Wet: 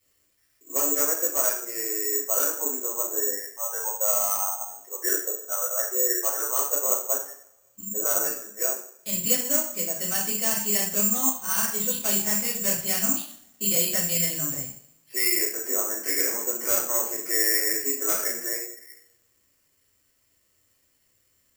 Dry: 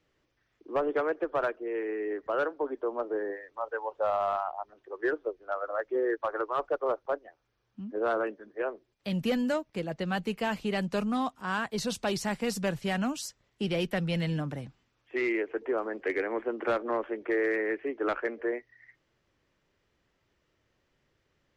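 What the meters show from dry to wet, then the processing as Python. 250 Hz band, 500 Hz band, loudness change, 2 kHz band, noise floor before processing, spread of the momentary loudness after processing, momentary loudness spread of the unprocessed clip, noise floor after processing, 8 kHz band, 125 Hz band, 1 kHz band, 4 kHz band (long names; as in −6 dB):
−3.0 dB, −3.0 dB, +8.5 dB, +1.0 dB, −76 dBFS, 8 LU, 7 LU, −68 dBFS, +25.5 dB, −4.5 dB, −2.5 dB, +9.0 dB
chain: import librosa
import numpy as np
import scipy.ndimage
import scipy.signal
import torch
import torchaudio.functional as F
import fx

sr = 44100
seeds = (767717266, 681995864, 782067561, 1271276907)

y = fx.peak_eq(x, sr, hz=5900.0, db=9.0, octaves=2.7)
y = fx.rev_double_slope(y, sr, seeds[0], early_s=0.5, late_s=1.7, knee_db=-26, drr_db=-8.0)
y = (np.kron(scipy.signal.resample_poly(y, 1, 6), np.eye(6)[0]) * 6)[:len(y)]
y = y * 10.0 ** (-11.5 / 20.0)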